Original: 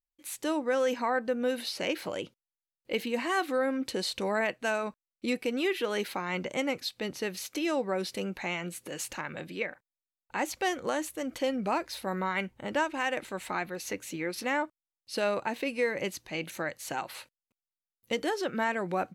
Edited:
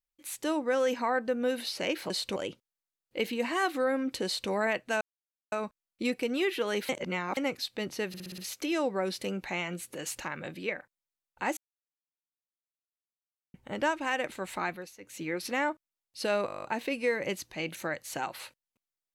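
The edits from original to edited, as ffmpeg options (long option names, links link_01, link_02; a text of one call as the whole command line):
ffmpeg -i in.wav -filter_complex "[0:a]asplit=23[link_01][link_02][link_03][link_04][link_05][link_06][link_07][link_08][link_09][link_10][link_11][link_12][link_13][link_14][link_15][link_16][link_17][link_18][link_19][link_20][link_21][link_22][link_23];[link_01]atrim=end=2.102[link_24];[link_02]atrim=start=3.988:end=4.252[link_25];[link_03]atrim=start=2.098:end=4.75,asetpts=PTS-STARTPTS,afade=type=out:start_time=2.648:duration=0.004:curve=hsin,apad=pad_dur=0.51[link_26];[link_04]atrim=start=4.75:end=6.122,asetpts=PTS-STARTPTS,afade=type=in:duration=0.004:curve=hsin[link_27];[link_05]atrim=start=6.118:end=6.602,asetpts=PTS-STARTPTS,areverse[link_28];[link_06]atrim=start=6.598:end=7.372[link_29];[link_07]atrim=start=7.308:end=7.372[link_30];[link_08]atrim=start=7.308:end=7.372[link_31];[link_09]atrim=start=7.308:end=7.372[link_32];[link_10]atrim=start=7.308:end=7.372[link_33];[link_11]atrim=start=7.308:end=10.5,asetpts=PTS-STARTPTS,afade=type=out:start_time=3.188:duration=0.004:curve=hsin[link_34];[link_12]atrim=start=10.5:end=12.47,asetpts=PTS-STARTPTS,volume=0[link_35];[link_13]atrim=start=12.47:end=13.9,asetpts=PTS-STARTPTS,afade=type=in:duration=0.004:curve=hsin,afade=type=out:start_time=1.15:duration=0.28:silence=0.0794328[link_36];[link_14]atrim=start=13.9:end=15.412,asetpts=PTS-STARTPTS,afade=type=in:duration=0.28:silence=0.0794328[link_37];[link_15]atrim=start=15.388:end=15.412[link_38];[link_16]atrim=start=15.388:end=15.412[link_39];[link_17]atrim=start=15.388:end=15.412[link_40];[link_18]atrim=start=15.388:end=15.412[link_41];[link_19]atrim=start=15.388:end=15.412[link_42];[link_20]atrim=start=15.388:end=15.412[link_43];[link_21]atrim=start=15.388:end=15.412[link_44];[link_22]atrim=start=15.388:end=15.412[link_45];[link_23]atrim=start=15.388[link_46];[link_24][link_25]acrossfade=duration=0.004:curve1=hsin:curve2=hsin[link_47];[link_26][link_27]concat=n=2:v=0:a=1[link_48];[link_47][link_48]acrossfade=duration=0.004:curve1=hsin:curve2=hsin[link_49];[link_49][link_28]acrossfade=duration=0.004:curve1=hsin:curve2=hsin[link_50];[link_50][link_29]acrossfade=duration=0.004:curve1=hsin:curve2=hsin[link_51];[link_51][link_30]acrossfade=duration=0.004:curve1=hsin:curve2=hsin[link_52];[link_52][link_31]acrossfade=duration=0.004:curve1=hsin:curve2=hsin[link_53];[link_53][link_32]acrossfade=duration=0.004:curve1=hsin:curve2=hsin[link_54];[link_54][link_33]acrossfade=duration=0.004:curve1=hsin:curve2=hsin[link_55];[link_34][link_35][link_36][link_37]concat=n=4:v=0:a=1[link_56];[link_55][link_56]acrossfade=duration=0.004:curve1=hsin:curve2=hsin[link_57];[link_57][link_38]acrossfade=duration=0.004:curve1=hsin:curve2=hsin[link_58];[link_58][link_39]acrossfade=duration=0.004:curve1=hsin:curve2=hsin[link_59];[link_59][link_40]acrossfade=duration=0.004:curve1=hsin:curve2=hsin[link_60];[link_60][link_41]acrossfade=duration=0.004:curve1=hsin:curve2=hsin[link_61];[link_61][link_42]acrossfade=duration=0.004:curve1=hsin:curve2=hsin[link_62];[link_62][link_43]acrossfade=duration=0.004:curve1=hsin:curve2=hsin[link_63];[link_63][link_44]acrossfade=duration=0.004:curve1=hsin:curve2=hsin[link_64];[link_64][link_45]acrossfade=duration=0.004:curve1=hsin:curve2=hsin[link_65];[link_65][link_46]acrossfade=duration=0.004:curve1=hsin:curve2=hsin" out.wav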